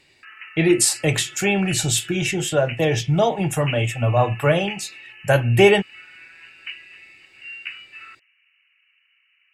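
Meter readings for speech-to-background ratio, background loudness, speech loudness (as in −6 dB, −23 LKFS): 16.5 dB, −36.0 LKFS, −19.5 LKFS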